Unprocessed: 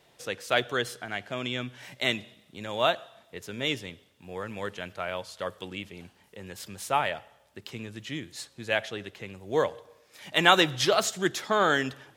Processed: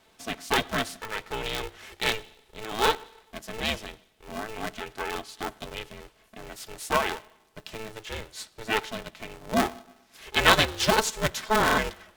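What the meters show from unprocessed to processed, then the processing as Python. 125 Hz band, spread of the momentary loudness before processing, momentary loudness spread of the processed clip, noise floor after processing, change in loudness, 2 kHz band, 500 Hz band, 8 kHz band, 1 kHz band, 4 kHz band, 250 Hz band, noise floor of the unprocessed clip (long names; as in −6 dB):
+1.5 dB, 19 LU, 19 LU, −62 dBFS, +1.0 dB, +1.5 dB, −1.0 dB, +3.0 dB, +1.5 dB, +1.0 dB, +0.5 dB, −62 dBFS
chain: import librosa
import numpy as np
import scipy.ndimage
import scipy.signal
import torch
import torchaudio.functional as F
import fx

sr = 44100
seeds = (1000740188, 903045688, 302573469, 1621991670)

y = x + 0.35 * np.pad(x, (int(4.6 * sr / 1000.0), 0))[:len(x)]
y = fx.buffer_glitch(y, sr, at_s=(11.64,), block=2048, repeats=2)
y = y * np.sign(np.sin(2.0 * np.pi * 220.0 * np.arange(len(y)) / sr))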